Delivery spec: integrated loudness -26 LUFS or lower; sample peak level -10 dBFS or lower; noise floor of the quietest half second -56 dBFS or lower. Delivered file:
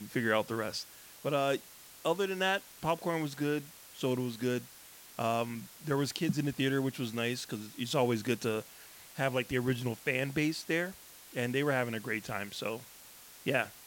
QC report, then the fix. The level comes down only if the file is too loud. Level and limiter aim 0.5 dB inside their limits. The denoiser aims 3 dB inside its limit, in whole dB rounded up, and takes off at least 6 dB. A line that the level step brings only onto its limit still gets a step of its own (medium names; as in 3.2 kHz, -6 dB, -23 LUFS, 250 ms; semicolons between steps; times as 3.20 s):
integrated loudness -33.5 LUFS: pass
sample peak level -15.5 dBFS: pass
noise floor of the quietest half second -54 dBFS: fail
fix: noise reduction 6 dB, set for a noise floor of -54 dBFS